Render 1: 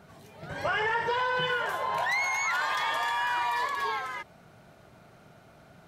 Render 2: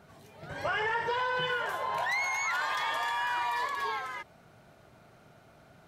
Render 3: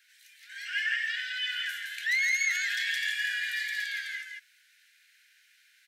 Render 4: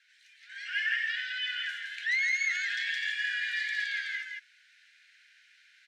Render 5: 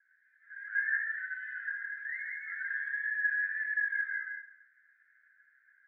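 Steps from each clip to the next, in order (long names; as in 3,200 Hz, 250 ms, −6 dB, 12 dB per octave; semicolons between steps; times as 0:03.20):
parametric band 180 Hz −3.5 dB 0.27 octaves; level −2.5 dB
Butterworth high-pass 1,600 Hz 96 dB per octave; single-tap delay 166 ms −3.5 dB; level +4 dB
speech leveller within 4 dB 2 s; high-frequency loss of the air 100 metres
elliptic low-pass filter 1,700 Hz, stop band 40 dB; flanger 0.52 Hz, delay 2.4 ms, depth 7.7 ms, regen +44%; convolution reverb RT60 1.0 s, pre-delay 3 ms, DRR −2 dB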